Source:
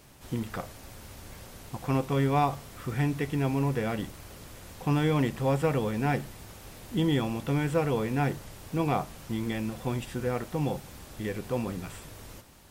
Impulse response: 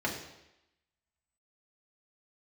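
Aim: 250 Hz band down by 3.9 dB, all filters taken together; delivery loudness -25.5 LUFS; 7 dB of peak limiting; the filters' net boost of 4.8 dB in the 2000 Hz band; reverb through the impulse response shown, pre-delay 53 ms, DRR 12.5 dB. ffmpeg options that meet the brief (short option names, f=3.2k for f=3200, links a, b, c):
-filter_complex "[0:a]equalizer=f=250:t=o:g=-5.5,equalizer=f=2k:t=o:g=6,alimiter=limit=-20.5dB:level=0:latency=1,asplit=2[a][b];[1:a]atrim=start_sample=2205,adelay=53[c];[b][c]afir=irnorm=-1:irlink=0,volume=-20dB[d];[a][d]amix=inputs=2:normalize=0,volume=6.5dB"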